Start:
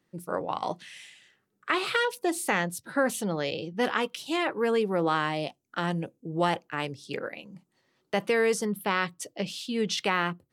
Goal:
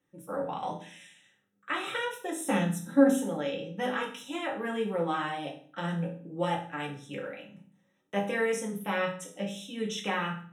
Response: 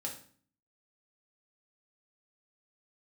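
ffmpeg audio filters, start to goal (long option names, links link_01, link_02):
-filter_complex "[0:a]asettb=1/sr,asplit=3[link_01][link_02][link_03];[link_01]atrim=end=2.424[link_04];[link_02]atrim=start=2.42:end=3.13,asetpts=PTS-STARTPTS,afade=type=in:duration=0.004:curve=qsin,afade=type=out:start_time=0.706:duration=0.004:curve=qsin,equalizer=frequency=125:width_type=o:width=1:gain=5,equalizer=frequency=250:width_type=o:width=1:gain=8,equalizer=frequency=2000:width_type=o:width=1:gain=-5,equalizer=frequency=4000:width_type=o:width=1:gain=6[link_05];[link_03]atrim=start=3.126[link_06];[link_04][link_05]acrossfade=duration=0.004:curve1=hsin:curve2=qsin[link_07];[link_07][link_06]acrossfade=duration=0.004:curve1=qsin:curve2=hsin,flanger=delay=2.1:depth=8.5:regen=-53:speed=0.31:shape=triangular,asuperstop=centerf=4600:order=12:qfactor=3.5[link_08];[1:a]atrim=start_sample=2205[link_09];[link_08][link_09]afir=irnorm=-1:irlink=0"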